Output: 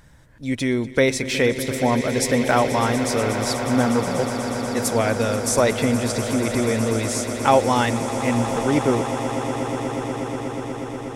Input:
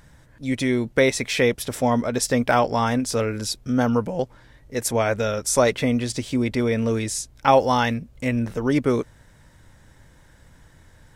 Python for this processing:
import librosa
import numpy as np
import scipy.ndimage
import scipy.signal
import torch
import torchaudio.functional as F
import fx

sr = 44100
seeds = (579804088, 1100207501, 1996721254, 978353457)

y = fx.echo_swell(x, sr, ms=121, loudest=8, wet_db=-14.5)